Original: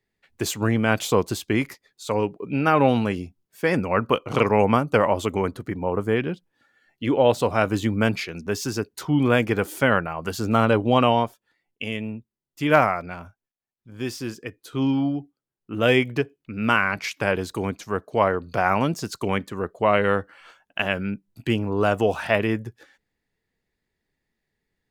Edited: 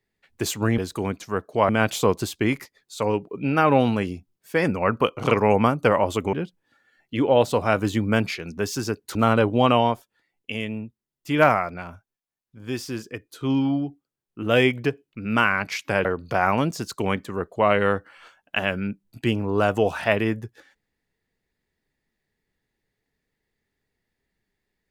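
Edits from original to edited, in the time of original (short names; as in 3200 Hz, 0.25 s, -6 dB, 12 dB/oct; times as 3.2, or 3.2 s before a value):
5.42–6.22 cut
9.04–10.47 cut
17.37–18.28 move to 0.78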